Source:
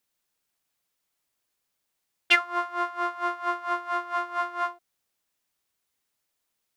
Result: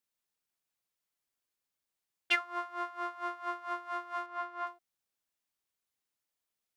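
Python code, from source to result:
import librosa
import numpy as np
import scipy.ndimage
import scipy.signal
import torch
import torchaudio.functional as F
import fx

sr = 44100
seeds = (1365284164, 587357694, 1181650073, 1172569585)

y = fx.lowpass(x, sr, hz=3300.0, slope=6, at=(4.26, 4.67))
y = F.gain(torch.from_numpy(y), -9.0).numpy()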